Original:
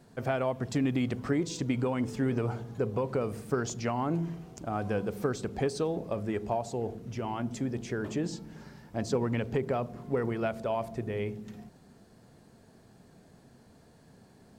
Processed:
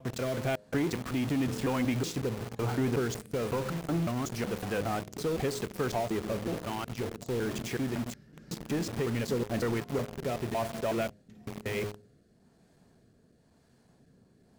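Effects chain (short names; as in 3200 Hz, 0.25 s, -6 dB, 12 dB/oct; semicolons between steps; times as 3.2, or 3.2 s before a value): slices in reverse order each 0.185 s, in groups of 4; de-hum 103.7 Hz, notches 6; rotary speaker horn 1 Hz; dynamic EQ 2400 Hz, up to +4 dB, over -51 dBFS, Q 0.73; in parallel at -5.5 dB: companded quantiser 2-bit; on the sum: gain -4 dB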